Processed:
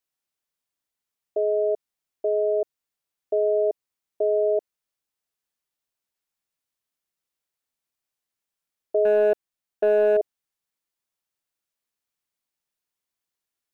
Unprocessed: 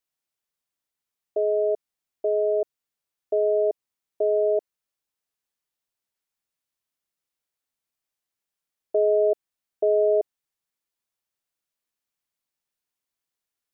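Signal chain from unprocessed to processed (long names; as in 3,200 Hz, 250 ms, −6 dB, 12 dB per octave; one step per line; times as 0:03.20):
0:09.05–0:10.17: leveller curve on the samples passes 1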